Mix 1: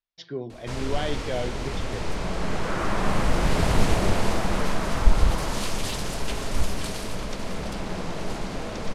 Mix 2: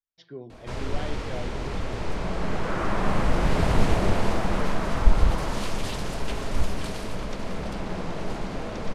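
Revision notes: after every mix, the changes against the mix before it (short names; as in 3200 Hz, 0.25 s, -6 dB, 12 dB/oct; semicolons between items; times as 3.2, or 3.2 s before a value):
speech -7.0 dB; master: add high shelf 3900 Hz -8 dB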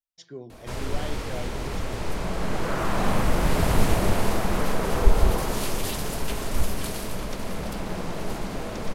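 speech: remove LPF 4600 Hz 24 dB/oct; second sound: remove Butterworth band-pass 1500 Hz, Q 0.87; master: remove air absorption 69 m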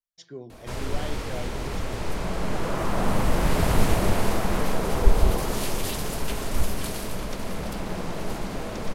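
second sound: add running mean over 17 samples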